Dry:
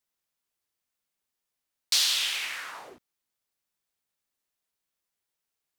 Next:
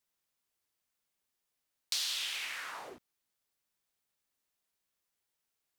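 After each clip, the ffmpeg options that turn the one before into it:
-af "acompressor=threshold=-40dB:ratio=2"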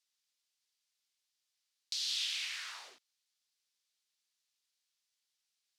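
-af "alimiter=level_in=4dB:limit=-24dB:level=0:latency=1:release=467,volume=-4dB,bandpass=f=4.6k:t=q:w=1.3:csg=0,volume=6.5dB"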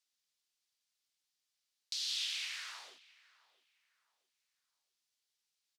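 -filter_complex "[0:a]asplit=2[a][b];[b]adelay=664,lowpass=f=1.9k:p=1,volume=-18.5dB,asplit=2[c][d];[d]adelay=664,lowpass=f=1.9k:p=1,volume=0.36,asplit=2[e][f];[f]adelay=664,lowpass=f=1.9k:p=1,volume=0.36[g];[a][c][e][g]amix=inputs=4:normalize=0,volume=-1.5dB"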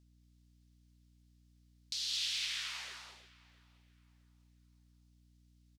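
-af "aecho=1:1:211|322:0.596|0.422,aeval=exprs='val(0)+0.000562*(sin(2*PI*60*n/s)+sin(2*PI*2*60*n/s)/2+sin(2*PI*3*60*n/s)/3+sin(2*PI*4*60*n/s)/4+sin(2*PI*5*60*n/s)/5)':c=same"

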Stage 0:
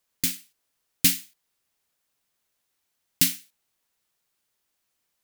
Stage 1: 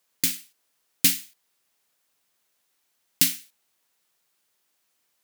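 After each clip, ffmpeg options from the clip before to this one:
-filter_complex "[0:a]highpass=f=200:p=1,asplit=2[a][b];[b]acompressor=threshold=-27dB:ratio=6,volume=1dB[c];[a][c]amix=inputs=2:normalize=0,volume=-2dB"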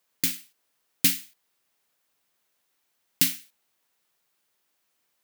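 -af "equalizer=f=8.1k:w=0.42:g=-3.5"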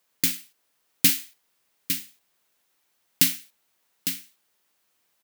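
-af "aecho=1:1:855:0.376,volume=2.5dB"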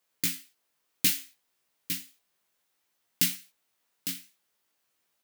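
-af "flanger=delay=16:depth=5.5:speed=0.6,volume=-2dB"

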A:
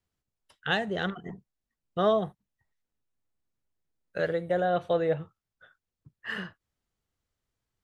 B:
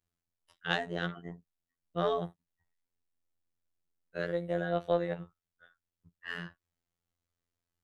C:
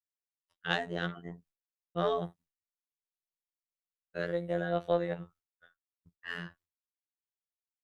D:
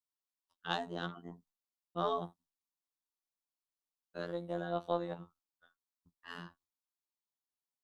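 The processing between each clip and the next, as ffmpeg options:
-af "afftfilt=real='hypot(re,im)*cos(PI*b)':imag='0':win_size=2048:overlap=0.75,aeval=exprs='0.355*(cos(1*acos(clip(val(0)/0.355,-1,1)))-cos(1*PI/2))+0.0316*(cos(2*acos(clip(val(0)/0.355,-1,1)))-cos(2*PI/2))':c=same,volume=-1.5dB"
-af "agate=range=-33dB:threshold=-58dB:ratio=3:detection=peak"
-af "equalizer=f=125:t=o:w=1:g=-11,equalizer=f=250:t=o:w=1:g=7,equalizer=f=500:t=o:w=1:g=-6,equalizer=f=1k:t=o:w=1:g=9,equalizer=f=2k:t=o:w=1:g=-12,equalizer=f=4k:t=o:w=1:g=4,volume=-3.5dB"

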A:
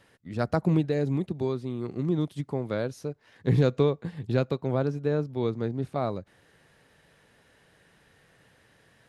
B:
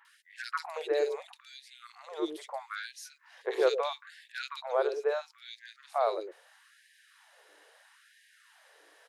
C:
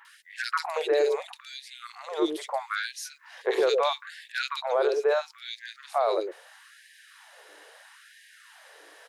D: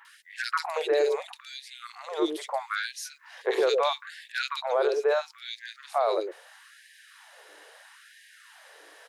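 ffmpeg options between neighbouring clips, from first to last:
-filter_complex "[0:a]acrossover=split=390|2200[a][b][c];[c]adelay=50[d];[a]adelay=110[e];[e][b][d]amix=inputs=3:normalize=0,aeval=exprs='val(0)+0.00794*(sin(2*PI*60*n/s)+sin(2*PI*2*60*n/s)/2+sin(2*PI*3*60*n/s)/3+sin(2*PI*4*60*n/s)/4+sin(2*PI*5*60*n/s)/5)':c=same,afftfilt=real='re*gte(b*sr/1024,330*pow(1600/330,0.5+0.5*sin(2*PI*0.76*pts/sr)))':imag='im*gte(b*sr/1024,330*pow(1600/330,0.5+0.5*sin(2*PI*0.76*pts/sr)))':win_size=1024:overlap=0.75,volume=4dB"
-af "alimiter=limit=-24dB:level=0:latency=1:release=13,volume=8.5dB"
-af "highpass=f=160:p=1"

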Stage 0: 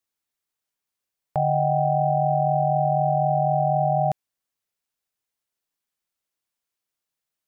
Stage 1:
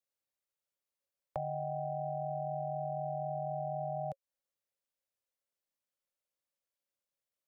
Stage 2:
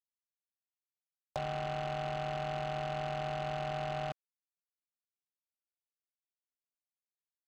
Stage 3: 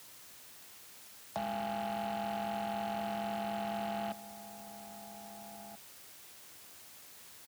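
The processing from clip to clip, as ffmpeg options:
-filter_complex "[0:a]equalizer=f=550:w=5.7:g=14,acrossover=split=160|520[a][b][c];[a]acompressor=threshold=-38dB:ratio=4[d];[b]acompressor=threshold=-41dB:ratio=4[e];[c]acompressor=threshold=-30dB:ratio=4[f];[d][e][f]amix=inputs=3:normalize=0,volume=-9dB"
-af "acrusher=bits=5:mix=0:aa=0.5"
-filter_complex "[0:a]aeval=exprs='val(0)+0.5*0.01*sgn(val(0))':c=same,asplit=2[a][b];[b]adelay=1633,volume=-12dB,highshelf=f=4k:g=-36.7[c];[a][c]amix=inputs=2:normalize=0,afreqshift=60,volume=-2dB"

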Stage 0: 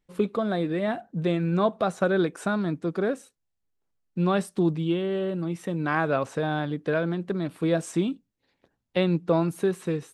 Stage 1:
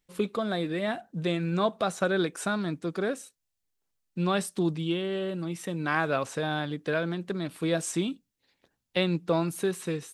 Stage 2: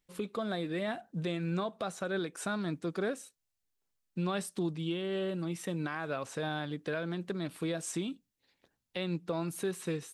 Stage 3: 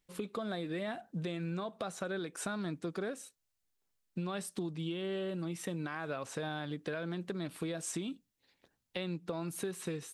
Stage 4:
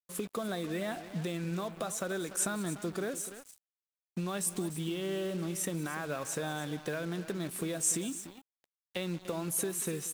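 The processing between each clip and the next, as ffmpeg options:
-af "highshelf=f=2.1k:g=10.5,volume=-4dB"
-af "alimiter=limit=-22dB:level=0:latency=1:release=274,volume=-2.5dB"
-af "acompressor=threshold=-35dB:ratio=6,volume=1dB"
-af "aexciter=amount=4.2:drive=2.6:freq=6k,aecho=1:1:185|294:0.106|0.2,acrusher=bits=7:mix=0:aa=0.5,volume=2dB"

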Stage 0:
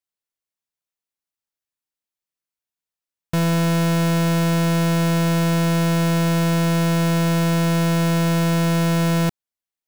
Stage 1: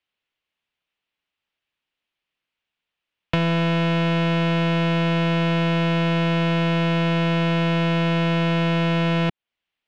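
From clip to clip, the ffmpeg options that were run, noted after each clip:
-filter_complex "[0:a]acrossover=split=220|1100[a][b][c];[a]acompressor=threshold=-35dB:ratio=4[d];[b]acompressor=threshold=-34dB:ratio=4[e];[c]acompressor=threshold=-39dB:ratio=4[f];[d][e][f]amix=inputs=3:normalize=0,lowpass=f=2.9k:t=q:w=2.5,volume=8.5dB"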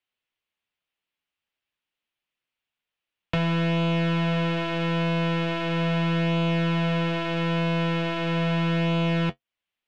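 -af "flanger=delay=7.9:depth=3.8:regen=-45:speed=0.39:shape=sinusoidal"

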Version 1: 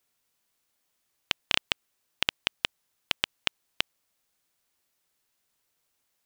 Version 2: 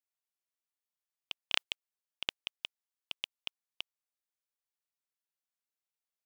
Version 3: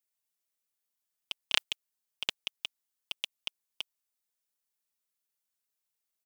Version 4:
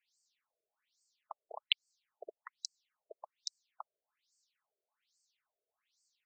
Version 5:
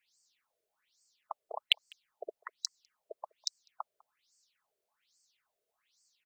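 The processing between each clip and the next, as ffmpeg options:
-af "highpass=560,agate=range=-17dB:threshold=-32dB:ratio=16:detection=peak,volume=-3dB"
-af "highshelf=f=5.3k:g=8.5,aecho=1:1:4.7:0.5"
-af "acompressor=threshold=-36dB:ratio=6,alimiter=limit=-19.5dB:level=0:latency=1,afftfilt=real='re*between(b*sr/1024,470*pow(6200/470,0.5+0.5*sin(2*PI*1.2*pts/sr))/1.41,470*pow(6200/470,0.5+0.5*sin(2*PI*1.2*pts/sr))*1.41)':imag='im*between(b*sr/1024,470*pow(6200/470,0.5+0.5*sin(2*PI*1.2*pts/sr))/1.41,470*pow(6200/470,0.5+0.5*sin(2*PI*1.2*pts/sr))*1.41)':win_size=1024:overlap=0.75,volume=15dB"
-filter_complex "[0:a]asplit=2[a][b];[b]adelay=200,highpass=300,lowpass=3.4k,asoftclip=type=hard:threshold=-17.5dB,volume=-26dB[c];[a][c]amix=inputs=2:normalize=0,asplit=2[d][e];[e]aeval=exprs='0.0631*(abs(mod(val(0)/0.0631+3,4)-2)-1)':c=same,volume=-12dB[f];[d][f]amix=inputs=2:normalize=0,volume=4dB"

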